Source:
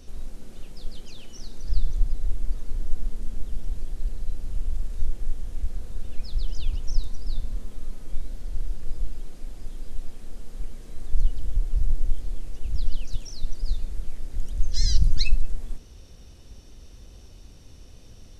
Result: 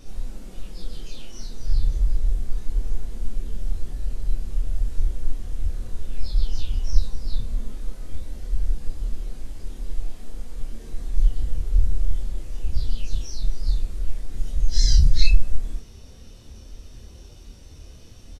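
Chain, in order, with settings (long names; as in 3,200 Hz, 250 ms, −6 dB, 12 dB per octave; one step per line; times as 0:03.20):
random phases in long frames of 100 ms
double-tracking delay 27 ms −5 dB
level +2 dB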